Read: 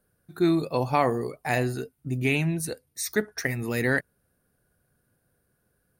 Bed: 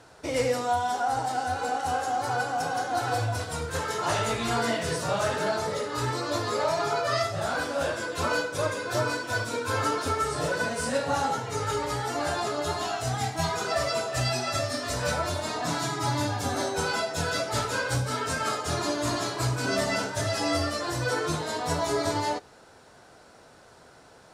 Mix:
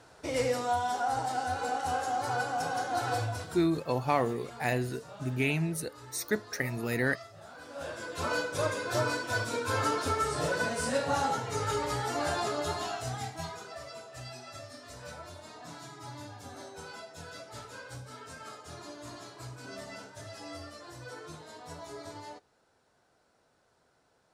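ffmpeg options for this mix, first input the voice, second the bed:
ffmpeg -i stem1.wav -i stem2.wav -filter_complex "[0:a]adelay=3150,volume=-4.5dB[link_01];[1:a]volume=14.5dB,afade=type=out:start_time=3.15:duration=0.6:silence=0.141254,afade=type=in:start_time=7.58:duration=0.99:silence=0.125893,afade=type=out:start_time=12.49:duration=1.22:silence=0.188365[link_02];[link_01][link_02]amix=inputs=2:normalize=0" out.wav

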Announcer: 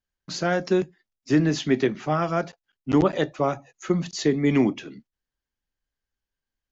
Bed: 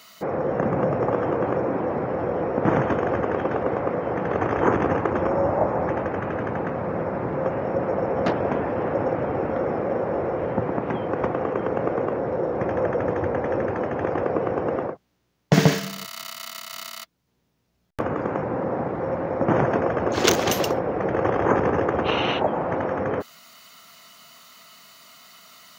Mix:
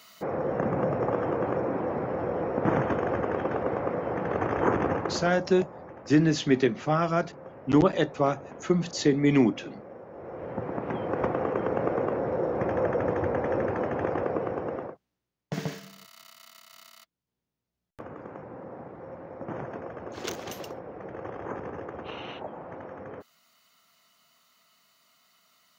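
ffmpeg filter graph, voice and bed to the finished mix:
ffmpeg -i stem1.wav -i stem2.wav -filter_complex "[0:a]adelay=4800,volume=-1dB[link_01];[1:a]volume=12.5dB,afade=type=out:start_time=4.87:duration=0.57:silence=0.16788,afade=type=in:start_time=10.13:duration=1.1:silence=0.141254,afade=type=out:start_time=13.95:duration=1.34:silence=0.223872[link_02];[link_01][link_02]amix=inputs=2:normalize=0" out.wav

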